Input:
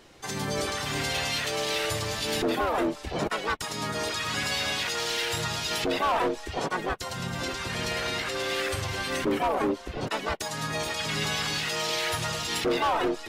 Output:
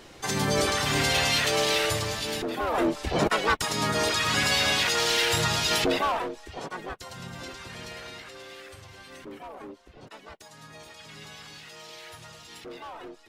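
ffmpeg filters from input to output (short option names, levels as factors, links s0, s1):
-af "volume=6.31,afade=t=out:st=1.59:d=0.92:silence=0.281838,afade=t=in:st=2.51:d=0.55:silence=0.281838,afade=t=out:st=5.74:d=0.52:silence=0.251189,afade=t=out:st=7.26:d=1.35:silence=0.354813"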